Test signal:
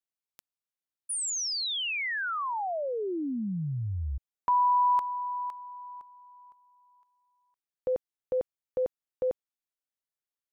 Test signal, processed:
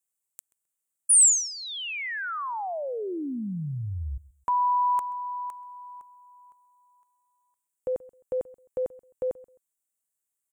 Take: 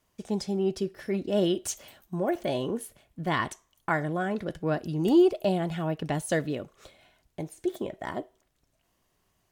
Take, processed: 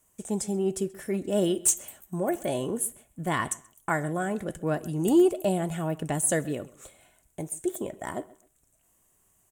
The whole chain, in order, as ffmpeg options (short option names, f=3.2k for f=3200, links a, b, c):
-filter_complex "[0:a]highshelf=f=6.2k:t=q:w=3:g=9.5,asplit=2[a][b];[b]adelay=131,lowpass=f=3.9k:p=1,volume=-20.5dB,asplit=2[c][d];[d]adelay=131,lowpass=f=3.9k:p=1,volume=0.25[e];[a][c][e]amix=inputs=3:normalize=0,aeval=exprs='0.237*(abs(mod(val(0)/0.237+3,4)-2)-1)':c=same"